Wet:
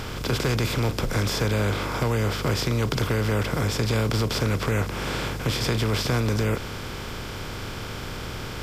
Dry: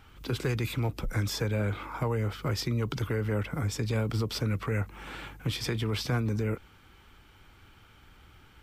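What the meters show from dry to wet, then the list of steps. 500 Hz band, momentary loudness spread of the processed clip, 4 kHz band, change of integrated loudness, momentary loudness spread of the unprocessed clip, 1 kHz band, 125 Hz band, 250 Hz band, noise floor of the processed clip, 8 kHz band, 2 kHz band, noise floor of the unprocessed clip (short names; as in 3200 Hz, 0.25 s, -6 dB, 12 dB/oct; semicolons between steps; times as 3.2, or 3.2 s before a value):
+7.0 dB, 10 LU, +8.5 dB, +5.5 dB, 5 LU, +9.5 dB, +5.5 dB, +6.0 dB, -34 dBFS, +9.0 dB, +8.5 dB, -57 dBFS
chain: per-bin compression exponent 0.4; gain +1.5 dB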